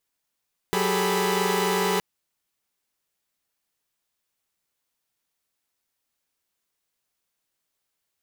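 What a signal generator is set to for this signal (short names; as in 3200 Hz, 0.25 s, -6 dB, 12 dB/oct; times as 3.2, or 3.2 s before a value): chord F#3/G4/G#4/A4/B5 saw, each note -25.5 dBFS 1.27 s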